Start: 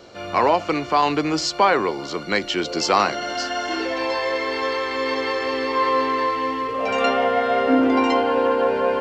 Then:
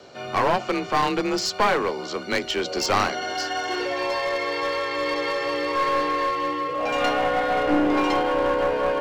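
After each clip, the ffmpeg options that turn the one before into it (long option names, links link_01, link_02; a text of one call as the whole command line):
ffmpeg -i in.wav -af "afreqshift=34,aeval=exprs='clip(val(0),-1,0.106)':channel_layout=same,volume=-1.5dB" out.wav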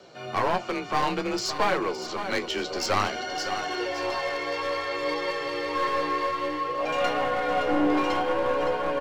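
ffmpeg -i in.wav -af "aecho=1:1:565|1130|1695|2260:0.316|0.12|0.0457|0.0174,flanger=delay=5.2:depth=8.8:regen=50:speed=0.57:shape=triangular" out.wav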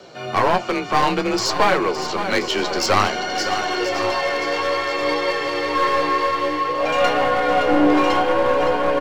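ffmpeg -i in.wav -af "aecho=1:1:1030|2060|3090|4120:0.224|0.101|0.0453|0.0204,volume=7.5dB" out.wav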